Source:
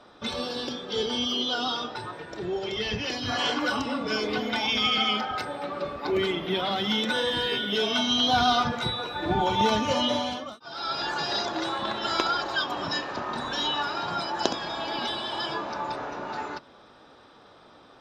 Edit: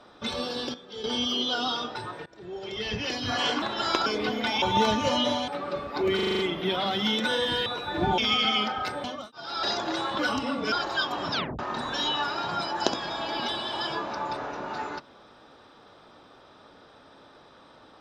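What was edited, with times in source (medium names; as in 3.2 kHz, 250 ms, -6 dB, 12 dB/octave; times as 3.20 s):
0.74–1.04 s: gain -10.5 dB
2.26–3.06 s: fade in, from -19.5 dB
3.62–4.15 s: swap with 11.87–12.31 s
4.71–5.57 s: swap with 9.46–10.32 s
6.24 s: stutter 0.04 s, 7 plays
7.51–8.94 s: delete
10.91–11.31 s: delete
12.91 s: tape stop 0.27 s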